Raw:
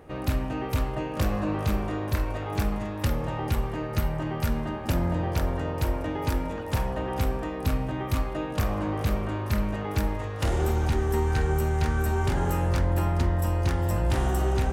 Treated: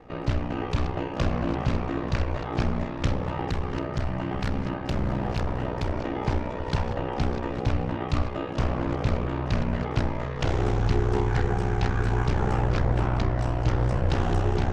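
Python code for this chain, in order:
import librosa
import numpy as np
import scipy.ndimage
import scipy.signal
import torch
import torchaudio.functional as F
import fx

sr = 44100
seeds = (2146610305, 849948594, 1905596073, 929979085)

y = fx.reverse_delay(x, sr, ms=569, wet_db=-10.5)
y = scipy.signal.sosfilt(scipy.signal.butter(4, 6000.0, 'lowpass', fs=sr, output='sos'), y)
y = fx.clip_hard(y, sr, threshold_db=-23.0, at=(3.17, 5.92))
y = y * np.sin(2.0 * np.pi * 31.0 * np.arange(len(y)) / sr)
y = fx.doppler_dist(y, sr, depth_ms=0.37)
y = F.gain(torch.from_numpy(y), 3.5).numpy()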